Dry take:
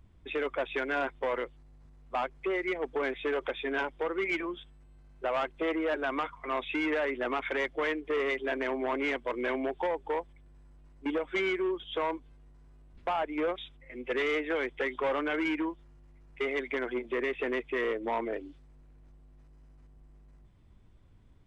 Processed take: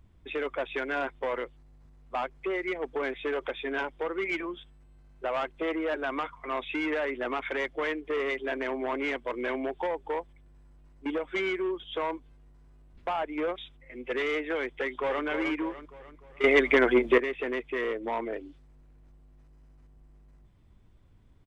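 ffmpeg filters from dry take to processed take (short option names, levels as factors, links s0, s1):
-filter_complex "[0:a]asplit=2[s0][s1];[s1]afade=t=in:st=14.71:d=0.01,afade=t=out:st=15.25:d=0.01,aecho=0:1:300|600|900|1200|1500|1800:0.398107|0.199054|0.0995268|0.0497634|0.0248817|0.0124408[s2];[s0][s2]amix=inputs=2:normalize=0,asplit=3[s3][s4][s5];[s3]atrim=end=16.442[s6];[s4]atrim=start=16.438:end=17.182,asetpts=PTS-STARTPTS,volume=3.76[s7];[s5]atrim=start=17.178[s8];[s6][s7]acrossfade=d=0.004:c1=hsin:c2=hsin[s9];[s9][s8]acrossfade=d=0.004:c1=hsin:c2=hsin"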